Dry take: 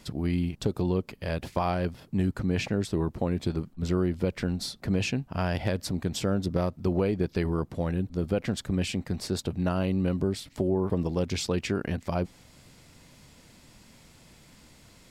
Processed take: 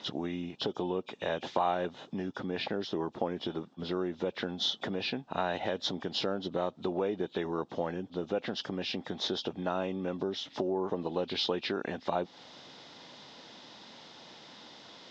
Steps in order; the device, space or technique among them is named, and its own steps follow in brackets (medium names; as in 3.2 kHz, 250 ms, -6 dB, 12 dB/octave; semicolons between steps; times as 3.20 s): hearing aid with frequency lowering (knee-point frequency compression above 2.3 kHz 1.5:1; compression 3:1, threshold -34 dBFS, peak gain reduction 10 dB; cabinet simulation 320–5700 Hz, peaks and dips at 830 Hz +5 dB, 2.3 kHz -6 dB, 3.5 kHz +5 dB); trim +6.5 dB